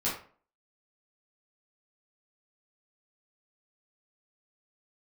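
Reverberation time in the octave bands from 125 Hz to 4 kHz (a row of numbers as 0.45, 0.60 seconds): 0.45, 0.45, 0.45, 0.45, 0.35, 0.30 seconds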